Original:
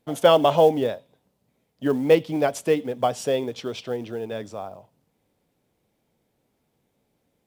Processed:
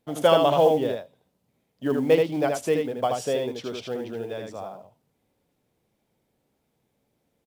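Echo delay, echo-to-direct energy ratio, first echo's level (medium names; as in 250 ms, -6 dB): 78 ms, -4.0 dB, -4.0 dB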